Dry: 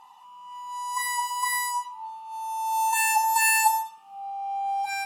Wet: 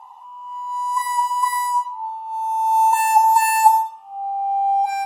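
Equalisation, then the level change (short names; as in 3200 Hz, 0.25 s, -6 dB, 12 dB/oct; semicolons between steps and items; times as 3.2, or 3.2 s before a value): band shelf 780 Hz +11.5 dB 1.2 oct; -2.0 dB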